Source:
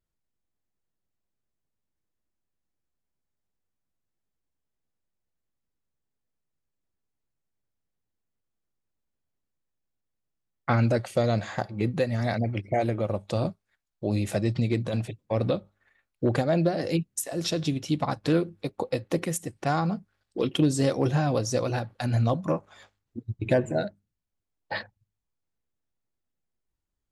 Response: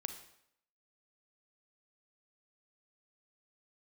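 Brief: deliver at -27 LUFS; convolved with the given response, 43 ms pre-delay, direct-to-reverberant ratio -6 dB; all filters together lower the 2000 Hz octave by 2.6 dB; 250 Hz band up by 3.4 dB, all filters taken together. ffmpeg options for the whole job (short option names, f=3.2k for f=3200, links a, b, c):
-filter_complex "[0:a]equalizer=f=250:t=o:g=4.5,equalizer=f=2k:t=o:g=-3.5,asplit=2[a][b];[1:a]atrim=start_sample=2205,adelay=43[c];[b][c]afir=irnorm=-1:irlink=0,volume=7dB[d];[a][d]amix=inputs=2:normalize=0,volume=-8.5dB"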